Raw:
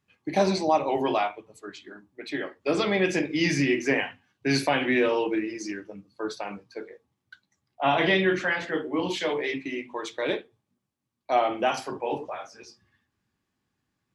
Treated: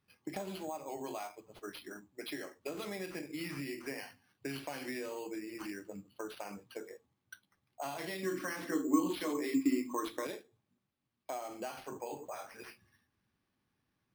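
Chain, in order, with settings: compression 6:1, threshold -37 dBFS, peak gain reduction 19 dB; 8.23–10.27 s: small resonant body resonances 280/1100 Hz, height 17 dB, ringing for 45 ms; careless resampling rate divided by 6×, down none, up hold; trim -2.5 dB

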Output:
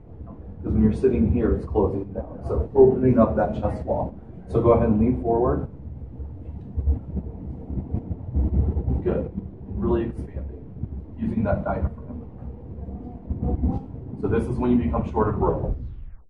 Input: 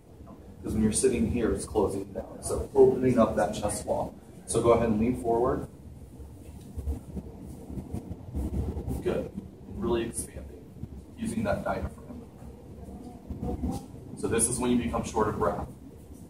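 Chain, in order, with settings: tape stop on the ending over 0.98 s; low-pass 1.6 kHz 12 dB/octave; bass shelf 140 Hz +9.5 dB; trim +3.5 dB

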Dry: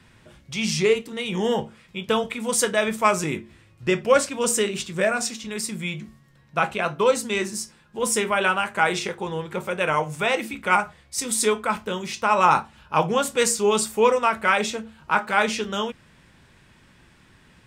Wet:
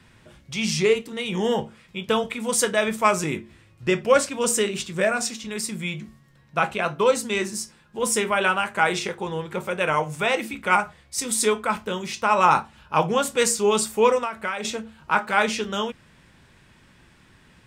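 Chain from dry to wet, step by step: 14.18–14.65 s: compression 6:1, threshold -25 dBFS, peak gain reduction 10.5 dB

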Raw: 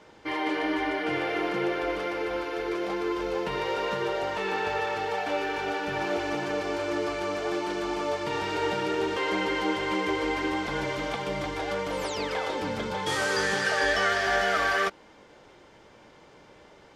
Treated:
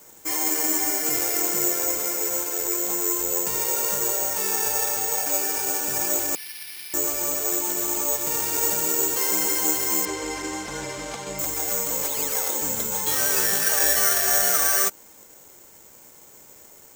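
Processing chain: 6.35–6.94 s: elliptic high-pass 1.9 kHz; careless resampling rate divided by 6×, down none, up zero stuff; 10.05–11.39 s: low-pass 4.5 kHz 12 dB/octave; trim -3 dB

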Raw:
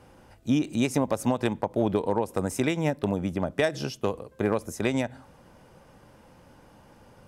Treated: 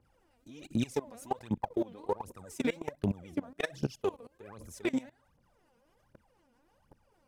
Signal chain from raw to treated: phaser 1.3 Hz, delay 4.4 ms, feedback 79%; level held to a coarse grid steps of 21 dB; trim -6.5 dB

